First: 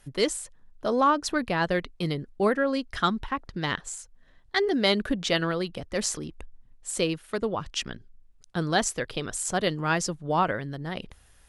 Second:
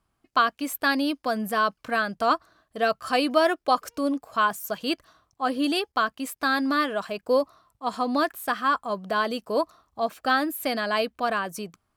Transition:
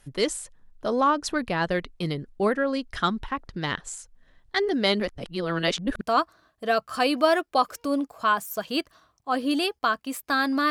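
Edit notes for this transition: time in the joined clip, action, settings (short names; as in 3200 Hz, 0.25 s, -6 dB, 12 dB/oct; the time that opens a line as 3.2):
first
5–6.01 reverse
6.01 switch to second from 2.14 s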